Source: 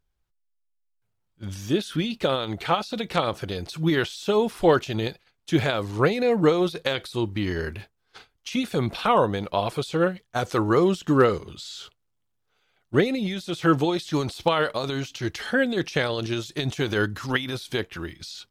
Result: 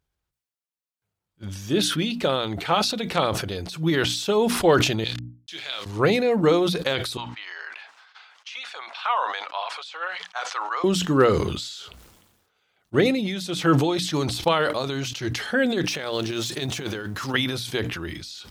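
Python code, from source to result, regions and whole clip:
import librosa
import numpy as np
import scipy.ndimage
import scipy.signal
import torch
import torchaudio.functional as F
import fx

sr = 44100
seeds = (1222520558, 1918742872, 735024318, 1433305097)

y = fx.chain(x, sr, fx.delta_hold(step_db=-42.0),
    fx.bandpass_q(hz=3900.0, q=1.5),
    fx.doubler(ms=30.0, db=-9.5), at=(5.04, 5.86))
y = fx.chain(y, sr, fx.highpass(hz=850.0, slope=24),
    fx.air_absorb(metres=130.0), at=(7.17, 10.84))
y = fx.chain(y, sr, fx.law_mismatch(coded='mu'),
    fx.low_shelf(hz=100.0, db=-10.0),
    fx.over_compress(threshold_db=-28.0, ratio=-0.5), at=(15.87, 17.34))
y = scipy.signal.sosfilt(scipy.signal.butter(2, 49.0, 'highpass', fs=sr, output='sos'), y)
y = fx.hum_notches(y, sr, base_hz=60, count=5)
y = fx.sustainer(y, sr, db_per_s=46.0)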